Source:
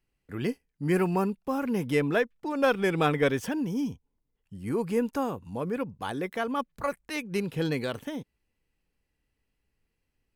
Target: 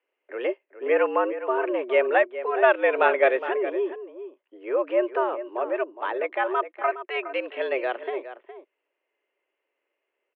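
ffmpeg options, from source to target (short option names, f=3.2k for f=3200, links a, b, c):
-filter_complex "[0:a]asettb=1/sr,asplit=3[a][b][c];[a]atrim=end=7.264[d];[b]atrim=start=7.26:end=7.72,asetpts=PTS-STARTPTS,afade=t=in:d=0.004:c=qsin,afade=t=out:st=0.456:d=0.004:c=qsin,tiltshelf=f=1.4k:g=-4[e];[c]atrim=start=7.716[f];[d][e]acrossfade=d=0.004:c1=hsin:c2=qsin[g];[g][f]acrossfade=d=0.004:c1=qsin:c2=hsin,asplit=2[h][i];[i]adelay=414,volume=-12dB,highshelf=f=4k:g=-9.32[j];[h][j]amix=inputs=2:normalize=0,highpass=f=260:t=q:w=0.5412,highpass=f=260:t=q:w=1.307,lowpass=f=2.7k:t=q:w=0.5176,lowpass=f=2.7k:t=q:w=0.7071,lowpass=f=2.7k:t=q:w=1.932,afreqshift=120,volume=5.5dB"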